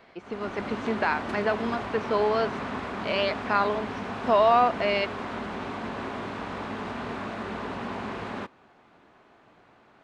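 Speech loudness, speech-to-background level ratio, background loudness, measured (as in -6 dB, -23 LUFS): -26.5 LUFS, 7.5 dB, -34.0 LUFS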